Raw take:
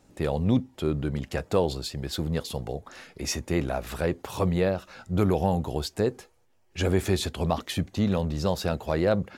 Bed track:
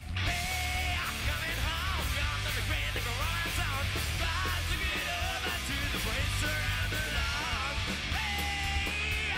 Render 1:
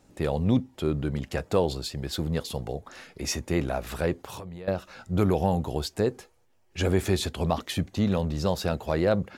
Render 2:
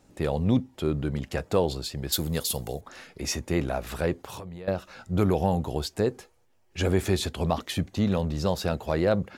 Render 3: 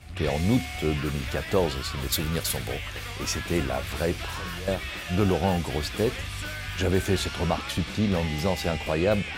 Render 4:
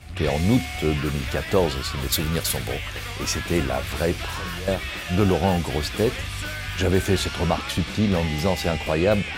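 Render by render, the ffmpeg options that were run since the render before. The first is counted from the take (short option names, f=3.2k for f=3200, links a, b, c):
-filter_complex "[0:a]asettb=1/sr,asplit=3[a][b][c];[a]atrim=end=4.174[d];[b]atrim=start=4.17:end=4.68,asetpts=PTS-STARTPTS,afade=t=in:d=0.004:c=qsin,afade=t=out:st=0.506:d=0.004:c=qsin,acompressor=threshold=-35dB:ratio=16:attack=3.2:release=140:knee=1:detection=peak[e];[c]atrim=start=4.676[f];[d][e]acrossfade=d=0.004:c1=hsin:c2=qsin[g];[g][f]acrossfade=d=0.004:c1=qsin:c2=hsin"
-filter_complex "[0:a]asettb=1/sr,asplit=3[a][b][c];[a]atrim=end=2.124[d];[b]atrim=start=2.12:end=2.81,asetpts=PTS-STARTPTS,afade=t=in:d=0.004:c=qsin,afade=t=out:st=0.686:d=0.004:c=qsin,aemphasis=mode=production:type=75fm[e];[c]atrim=start=2.806[f];[d][e]acrossfade=d=0.004:c1=hsin:c2=qsin[g];[g][f]acrossfade=d=0.004:c1=qsin:c2=hsin"
-filter_complex "[1:a]volume=-3dB[a];[0:a][a]amix=inputs=2:normalize=0"
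-af "volume=3.5dB"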